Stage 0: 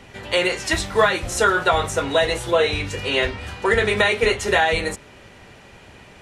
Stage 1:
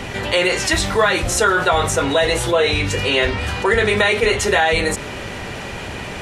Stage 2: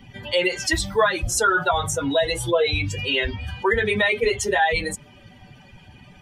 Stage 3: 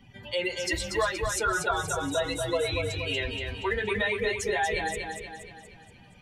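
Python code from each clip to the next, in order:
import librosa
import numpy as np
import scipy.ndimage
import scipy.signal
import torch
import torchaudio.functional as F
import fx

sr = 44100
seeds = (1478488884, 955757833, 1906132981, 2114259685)

y1 = fx.env_flatten(x, sr, amount_pct=50)
y2 = fx.bin_expand(y1, sr, power=2.0)
y3 = fx.echo_feedback(y2, sr, ms=237, feedback_pct=50, wet_db=-5.0)
y3 = F.gain(torch.from_numpy(y3), -8.5).numpy()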